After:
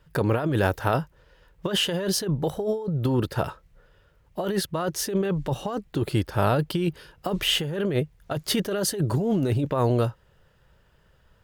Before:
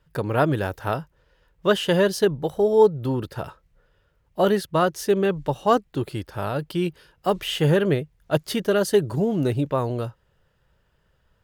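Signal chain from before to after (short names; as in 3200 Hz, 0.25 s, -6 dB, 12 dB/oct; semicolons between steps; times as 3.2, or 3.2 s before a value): 5.44–7.88 low shelf 380 Hz +2 dB; negative-ratio compressor -25 dBFS, ratio -1; gain +1 dB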